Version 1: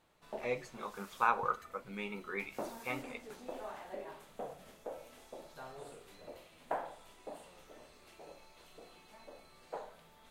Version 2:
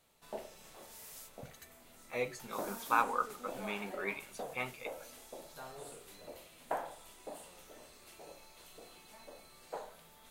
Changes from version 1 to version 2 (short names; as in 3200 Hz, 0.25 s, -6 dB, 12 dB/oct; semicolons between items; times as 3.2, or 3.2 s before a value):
speech: entry +1.70 s; master: add high shelf 5900 Hz +12 dB